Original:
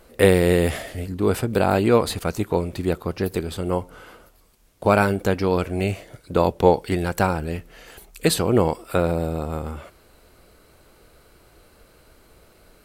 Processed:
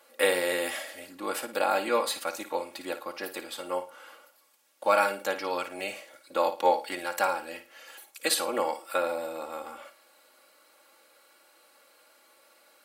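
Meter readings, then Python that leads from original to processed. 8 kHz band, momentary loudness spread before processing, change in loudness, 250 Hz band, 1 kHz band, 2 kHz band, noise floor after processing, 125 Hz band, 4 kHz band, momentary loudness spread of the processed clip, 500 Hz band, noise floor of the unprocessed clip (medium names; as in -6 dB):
-2.0 dB, 11 LU, -7.5 dB, -17.0 dB, -3.5 dB, -3.0 dB, -61 dBFS, under -30 dB, -2.5 dB, 16 LU, -8.5 dB, -55 dBFS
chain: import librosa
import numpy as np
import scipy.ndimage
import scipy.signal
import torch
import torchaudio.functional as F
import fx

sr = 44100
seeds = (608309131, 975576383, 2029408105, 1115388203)

p1 = scipy.signal.sosfilt(scipy.signal.butter(2, 660.0, 'highpass', fs=sr, output='sos'), x)
p2 = p1 + 0.87 * np.pad(p1, (int(3.6 * sr / 1000.0), 0))[:len(p1)]
p3 = p2 + fx.room_flutter(p2, sr, wall_m=9.5, rt60_s=0.3, dry=0)
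y = p3 * 10.0 ** (-5.0 / 20.0)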